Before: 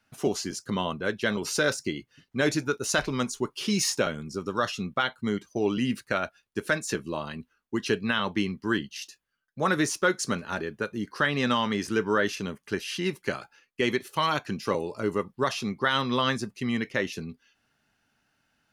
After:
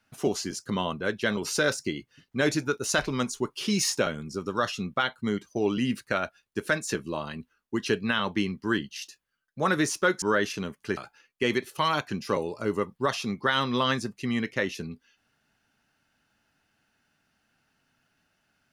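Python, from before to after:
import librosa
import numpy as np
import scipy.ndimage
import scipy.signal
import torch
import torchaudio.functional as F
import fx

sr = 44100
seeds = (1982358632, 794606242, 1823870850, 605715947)

y = fx.edit(x, sr, fx.cut(start_s=10.22, length_s=1.83),
    fx.cut(start_s=12.8, length_s=0.55), tone=tone)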